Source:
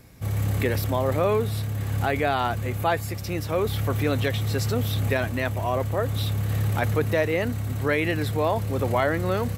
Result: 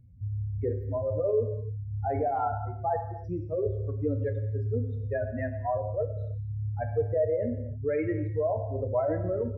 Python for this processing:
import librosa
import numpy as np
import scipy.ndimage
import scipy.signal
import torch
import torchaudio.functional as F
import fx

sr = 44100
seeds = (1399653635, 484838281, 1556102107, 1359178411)

y = fx.spec_expand(x, sr, power=3.2)
y = fx.rev_gated(y, sr, seeds[0], gate_ms=350, shape='falling', drr_db=4.5)
y = y * librosa.db_to_amplitude(-4.5)